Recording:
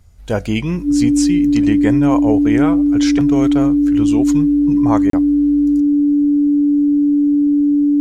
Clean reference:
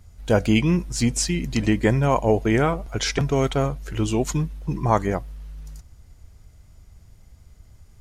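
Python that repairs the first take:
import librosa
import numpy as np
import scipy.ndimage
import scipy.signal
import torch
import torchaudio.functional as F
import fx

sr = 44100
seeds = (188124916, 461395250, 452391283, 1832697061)

y = fx.notch(x, sr, hz=290.0, q=30.0)
y = fx.fix_interpolate(y, sr, at_s=(5.1,), length_ms=33.0)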